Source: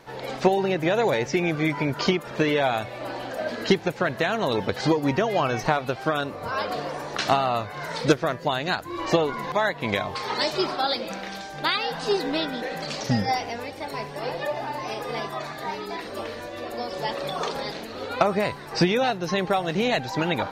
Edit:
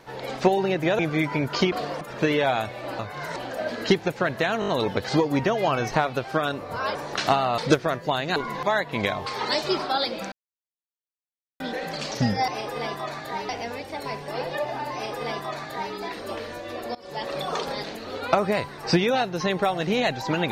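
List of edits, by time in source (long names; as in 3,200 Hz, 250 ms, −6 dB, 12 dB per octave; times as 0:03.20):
0:00.99–0:01.45: remove
0:04.40: stutter 0.02 s, 5 plays
0:06.67–0:06.96: move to 0:02.18
0:07.59–0:07.96: move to 0:03.16
0:08.74–0:09.25: remove
0:11.21–0:12.49: silence
0:14.81–0:15.82: duplicate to 0:13.37
0:16.83–0:17.20: fade in, from −21.5 dB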